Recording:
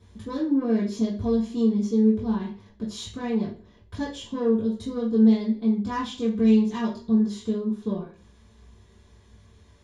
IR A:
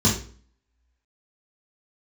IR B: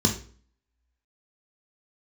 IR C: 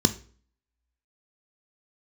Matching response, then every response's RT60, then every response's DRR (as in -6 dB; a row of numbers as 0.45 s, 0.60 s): A; 0.45 s, 0.45 s, 0.45 s; -6.5 dB, 2.0 dB, 10.5 dB